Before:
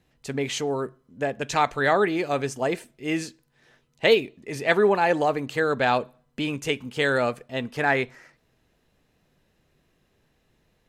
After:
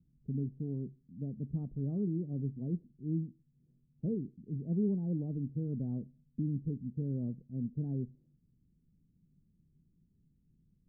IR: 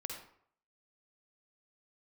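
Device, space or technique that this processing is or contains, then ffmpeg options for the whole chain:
the neighbour's flat through the wall: -af "lowpass=f=250:w=0.5412,lowpass=f=250:w=1.3066,equalizer=f=170:t=o:w=0.49:g=6.5,volume=-2.5dB"

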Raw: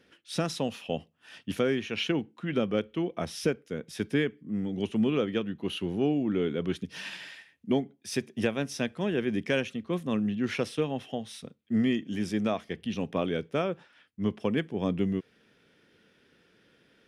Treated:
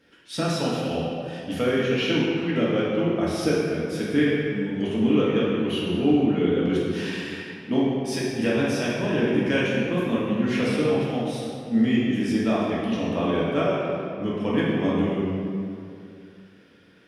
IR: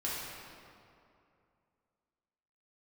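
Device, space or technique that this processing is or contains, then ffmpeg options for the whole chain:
stairwell: -filter_complex "[1:a]atrim=start_sample=2205[a];[0:a][a]afir=irnorm=-1:irlink=0,volume=2dB"

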